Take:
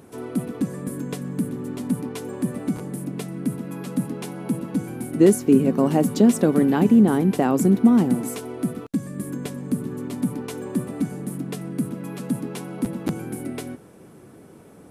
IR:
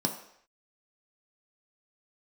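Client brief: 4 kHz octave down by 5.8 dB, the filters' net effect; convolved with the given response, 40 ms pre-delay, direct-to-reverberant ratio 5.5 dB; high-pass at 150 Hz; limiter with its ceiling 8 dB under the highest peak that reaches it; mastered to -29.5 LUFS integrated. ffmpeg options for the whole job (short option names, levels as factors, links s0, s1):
-filter_complex "[0:a]highpass=150,equalizer=f=4000:t=o:g=-8,alimiter=limit=0.237:level=0:latency=1,asplit=2[s0][s1];[1:a]atrim=start_sample=2205,adelay=40[s2];[s1][s2]afir=irnorm=-1:irlink=0,volume=0.251[s3];[s0][s3]amix=inputs=2:normalize=0,volume=0.398"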